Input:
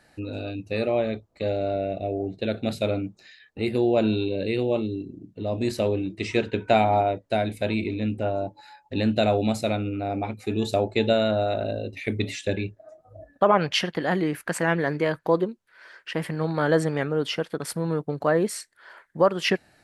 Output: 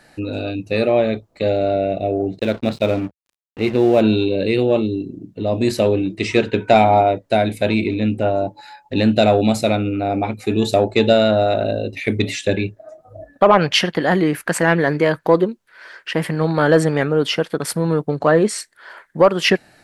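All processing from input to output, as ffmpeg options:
ffmpeg -i in.wav -filter_complex "[0:a]asettb=1/sr,asplit=3[link_01][link_02][link_03];[link_01]atrim=end=2.394[link_04];[link_02]atrim=start=2.39:end=4.01,asetpts=PTS-STARTPTS,afade=type=in:duration=0.004:curve=qsin,afade=type=out:start_time=1.616:duration=0.004:curve=qsin,lowpass=4000,aeval=exprs='sgn(val(0))*max(abs(val(0))-0.00794,0)':channel_layout=same[link_05];[link_03]atrim=start=4.006[link_06];[link_04][link_05]acrossfade=duration=0.004:curve1=hsin:curve2=qsin[link_07];[link_07][link_06]acrossfade=duration=0.004:curve1=qsin:curve2=hsin,asettb=1/sr,asplit=3[link_08][link_09][link_10];[link_08]atrim=end=18.184[link_11];[link_09]atrim=start=18.18:end=18.58,asetpts=PTS-STARTPTS,afade=type=in:duration=0.004:curve=qsin,afade=type=out:start_time=0.396:duration=0.004:curve=qsin,lowpass=frequency=9300:width=0.5412,lowpass=frequency=9300:width=1.3066,asplit=2[link_12][link_13];[link_13]adelay=19,volume=-13.5dB[link_14];[link_12][link_14]amix=inputs=2:normalize=0,atrim=end_sample=17640[link_15];[link_10]atrim=start=18.576[link_16];[link_11][link_15]acrossfade=duration=0.004:curve1=hsin:curve2=qsin[link_17];[link_17][link_16]acrossfade=duration=0.004:curve1=qsin:curve2=hsin,equalizer=frequency=71:width=3.4:gain=-13,acontrast=75,volume=1.5dB" out.wav

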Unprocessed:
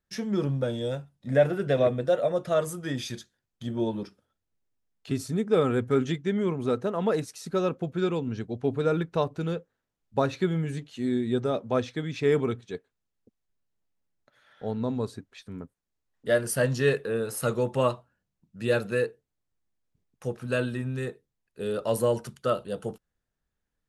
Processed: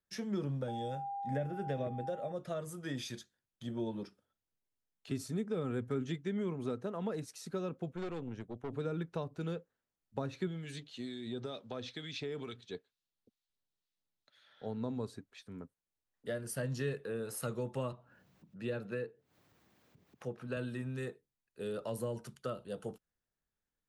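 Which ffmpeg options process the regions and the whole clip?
ffmpeg -i in.wav -filter_complex "[0:a]asettb=1/sr,asplit=3[link_01][link_02][link_03];[link_01]atrim=end=0.684[link_04];[link_02]atrim=start=0.68:end=2.32,asetpts=PTS-STARTPTS,afade=type=in:duration=0.004:curve=qsin,afade=type=out:start_time=1.636:duration=0.004:curve=qsin,aeval=exprs='val(0)+0.0355*sin(2*PI*800*n/s)':channel_layout=same,bandreject=frequency=4000:width=8.2[link_05];[link_03]atrim=start=2.316[link_06];[link_04][link_05]acrossfade=duration=0.004:curve1=hsin:curve2=qsin[link_07];[link_07][link_06]acrossfade=duration=0.004:curve1=qsin:curve2=hsin,asettb=1/sr,asplit=3[link_08][link_09][link_10];[link_08]atrim=end=7.924[link_11];[link_09]atrim=start=7.92:end=8.73,asetpts=PTS-STARTPTS,afade=type=in:duration=0.004:curve=qsin,afade=type=out:start_time=0.806:duration=0.004:curve=qsin,equalizer=frequency=4500:width_type=o:width=0.29:gain=-14.5,aeval=exprs='(tanh(25.1*val(0)+0.7)-tanh(0.7))/25.1':channel_layout=same[link_12];[link_10]atrim=start=8.726[link_13];[link_11][link_12]acrossfade=duration=0.004:curve1=hsin:curve2=qsin[link_14];[link_14][link_13]acrossfade=duration=0.004:curve1=qsin:curve2=hsin,asettb=1/sr,asplit=3[link_15][link_16][link_17];[link_15]atrim=end=10.474[link_18];[link_16]atrim=start=10.47:end=14.66,asetpts=PTS-STARTPTS,afade=type=in:duration=0.004:curve=qsin,afade=type=out:start_time=4.186:duration=0.004:curve=qsin,equalizer=frequency=3900:width=1.2:gain=12,acompressor=threshold=-27dB:ratio=6:attack=3.2:release=140:knee=1:detection=peak,acrossover=split=1400[link_19][link_20];[link_19]aeval=exprs='val(0)*(1-0.5/2+0.5/2*cos(2*PI*2.2*n/s))':channel_layout=same[link_21];[link_20]aeval=exprs='val(0)*(1-0.5/2-0.5/2*cos(2*PI*2.2*n/s))':channel_layout=same[link_22];[link_21][link_22]amix=inputs=2:normalize=0[link_23];[link_17]atrim=start=14.656[link_24];[link_18][link_23]acrossfade=duration=0.004:curve1=hsin:curve2=qsin[link_25];[link_25][link_24]acrossfade=duration=0.004:curve1=qsin:curve2=hsin,asettb=1/sr,asplit=3[link_26][link_27][link_28];[link_26]atrim=end=17.924[link_29];[link_27]atrim=start=17.92:end=20.57,asetpts=PTS-STARTPTS,afade=type=in:duration=0.004:curve=qsin,afade=type=out:start_time=2.646:duration=0.004:curve=qsin,highpass=97,equalizer=frequency=9500:width_type=o:width=1.7:gain=-11.5,acompressor=mode=upward:threshold=-37dB:ratio=2.5:attack=3.2:release=140:knee=2.83:detection=peak[link_30];[link_28]atrim=start=20.566[link_31];[link_29][link_30]acrossfade=duration=0.004:curve1=hsin:curve2=qsin[link_32];[link_32][link_31]acrossfade=duration=0.004:curve1=qsin:curve2=hsin,lowshelf=frequency=120:gain=-5,acrossover=split=260[link_33][link_34];[link_34]acompressor=threshold=-31dB:ratio=6[link_35];[link_33][link_35]amix=inputs=2:normalize=0,volume=-6.5dB" out.wav

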